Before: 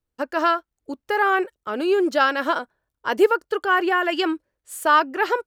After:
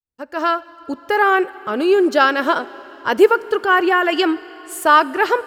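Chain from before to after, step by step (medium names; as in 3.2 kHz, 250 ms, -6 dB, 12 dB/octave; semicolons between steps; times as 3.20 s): fade-in on the opening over 0.71 s; peaking EQ 120 Hz +5 dB 1.7 oct; plate-style reverb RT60 4.4 s, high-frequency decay 0.95×, DRR 17.5 dB; trim +4.5 dB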